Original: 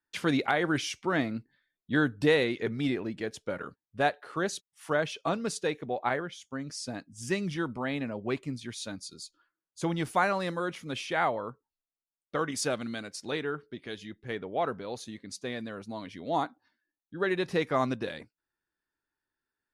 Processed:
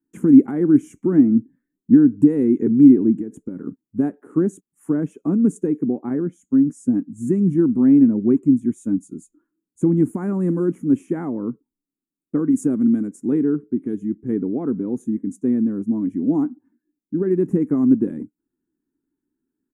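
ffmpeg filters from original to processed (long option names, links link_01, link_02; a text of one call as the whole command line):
ffmpeg -i in.wav -filter_complex "[0:a]asettb=1/sr,asplit=3[link_01][link_02][link_03];[link_01]atrim=end=3.164[link_04];[link_02]atrim=start=3.16:end=3.67,asetpts=PTS-STARTPTS,afade=type=in:duration=0.004:curve=qsin,afade=type=out:start_time=0.506:duration=0.004:curve=qsin,acompressor=threshold=-39dB:ratio=10:attack=3.2:release=140:knee=1:detection=peak[link_05];[link_03]atrim=start=3.666[link_06];[link_04][link_05]acrossfade=duration=0.004:curve1=hsin:curve2=qsin[link_07];[link_07][link_06]acrossfade=duration=0.004:curve1=qsin:curve2=hsin,firequalizer=gain_entry='entry(100,0);entry(190,9);entry(400,12);entry(4400,-30);entry(7000,7)':delay=0.05:min_phase=1,alimiter=limit=-13.5dB:level=0:latency=1:release=202,lowshelf=frequency=410:width_type=q:width=3:gain=13.5,volume=-8dB" out.wav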